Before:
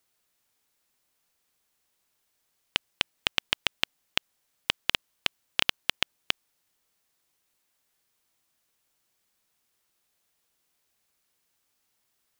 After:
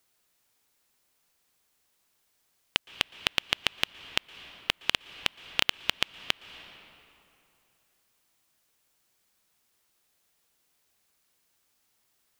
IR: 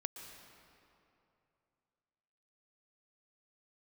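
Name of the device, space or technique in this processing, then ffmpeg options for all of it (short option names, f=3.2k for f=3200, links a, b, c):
compressed reverb return: -filter_complex "[0:a]asplit=2[a][b];[1:a]atrim=start_sample=2205[c];[b][c]afir=irnorm=-1:irlink=0,acompressor=threshold=-37dB:ratio=5,volume=-1.5dB[d];[a][d]amix=inputs=2:normalize=0,volume=-1.5dB"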